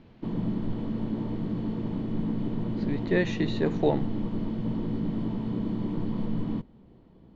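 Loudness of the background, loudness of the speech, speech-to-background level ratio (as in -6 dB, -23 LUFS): -31.5 LUFS, -29.5 LUFS, 2.0 dB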